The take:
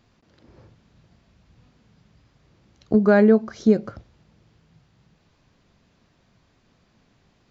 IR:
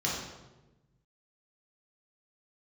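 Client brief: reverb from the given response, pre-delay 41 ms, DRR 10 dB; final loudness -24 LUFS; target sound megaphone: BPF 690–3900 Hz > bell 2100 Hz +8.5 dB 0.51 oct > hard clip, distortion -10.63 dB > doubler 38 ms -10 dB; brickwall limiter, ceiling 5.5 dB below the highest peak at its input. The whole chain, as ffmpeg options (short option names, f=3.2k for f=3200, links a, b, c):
-filter_complex "[0:a]alimiter=limit=-11dB:level=0:latency=1,asplit=2[a][b];[1:a]atrim=start_sample=2205,adelay=41[c];[b][c]afir=irnorm=-1:irlink=0,volume=-18dB[d];[a][d]amix=inputs=2:normalize=0,highpass=690,lowpass=3.9k,equalizer=f=2.1k:t=o:w=0.51:g=8.5,asoftclip=type=hard:threshold=-22dB,asplit=2[e][f];[f]adelay=38,volume=-10dB[g];[e][g]amix=inputs=2:normalize=0,volume=8dB"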